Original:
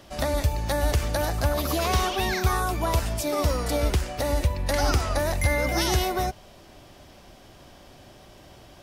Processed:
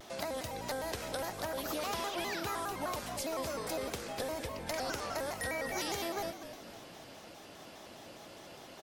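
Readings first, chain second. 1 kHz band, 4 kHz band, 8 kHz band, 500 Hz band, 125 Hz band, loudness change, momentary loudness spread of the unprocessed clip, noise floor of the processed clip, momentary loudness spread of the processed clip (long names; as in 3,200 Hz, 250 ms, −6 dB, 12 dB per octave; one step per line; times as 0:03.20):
−10.5 dB, −9.5 dB, −9.5 dB, −10.0 dB, −22.5 dB, −12.0 dB, 3 LU, −52 dBFS, 15 LU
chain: Bessel high-pass filter 240 Hz, order 2
downward compressor 2 to 1, threshold −43 dBFS, peak gain reduction 12 dB
echo with shifted repeats 248 ms, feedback 48%, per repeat −57 Hz, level −11 dB
pitch modulation by a square or saw wave square 4.9 Hz, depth 160 cents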